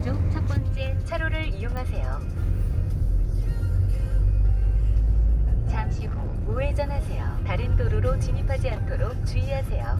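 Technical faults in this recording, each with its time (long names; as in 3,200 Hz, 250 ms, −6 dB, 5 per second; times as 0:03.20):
0:01.77: click −21 dBFS
0:05.96–0:06.49: clipping −24 dBFS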